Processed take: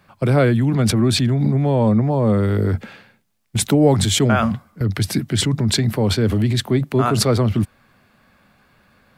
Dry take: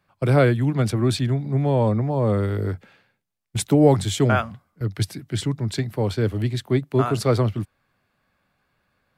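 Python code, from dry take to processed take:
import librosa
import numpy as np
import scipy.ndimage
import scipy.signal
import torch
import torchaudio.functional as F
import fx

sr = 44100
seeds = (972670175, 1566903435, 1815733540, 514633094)

p1 = fx.over_compress(x, sr, threshold_db=-30.0, ratio=-1.0)
p2 = x + (p1 * 10.0 ** (3.0 / 20.0))
y = fx.peak_eq(p2, sr, hz=220.0, db=6.5, octaves=0.32)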